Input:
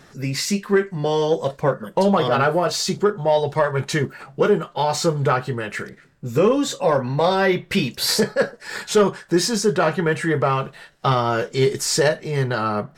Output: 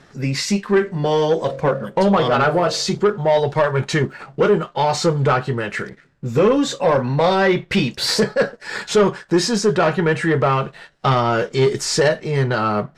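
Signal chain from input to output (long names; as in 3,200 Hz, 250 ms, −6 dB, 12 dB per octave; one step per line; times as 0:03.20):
0:00.73–0:02.95: hum removal 45.3 Hz, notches 16
leveller curve on the samples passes 1
high-frequency loss of the air 54 metres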